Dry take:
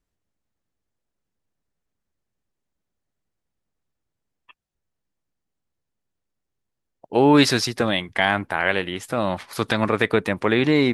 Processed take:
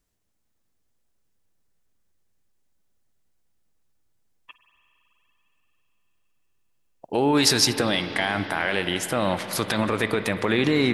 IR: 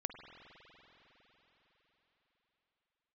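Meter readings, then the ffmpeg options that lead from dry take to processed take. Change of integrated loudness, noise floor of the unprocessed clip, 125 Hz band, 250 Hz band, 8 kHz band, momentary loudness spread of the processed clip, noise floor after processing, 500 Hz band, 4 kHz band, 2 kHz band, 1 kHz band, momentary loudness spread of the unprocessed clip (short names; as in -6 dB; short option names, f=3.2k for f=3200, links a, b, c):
-2.0 dB, -81 dBFS, -2.5 dB, -3.5 dB, +6.5 dB, 7 LU, -71 dBFS, -3.5 dB, +1.5 dB, -3.0 dB, -3.5 dB, 10 LU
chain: -filter_complex "[0:a]alimiter=limit=-14dB:level=0:latency=1:release=49,asplit=2[a][b];[1:a]atrim=start_sample=2205,highshelf=f=3.7k:g=11.5[c];[b][c]afir=irnorm=-1:irlink=0,volume=3dB[d];[a][d]amix=inputs=2:normalize=0,volume=-4dB"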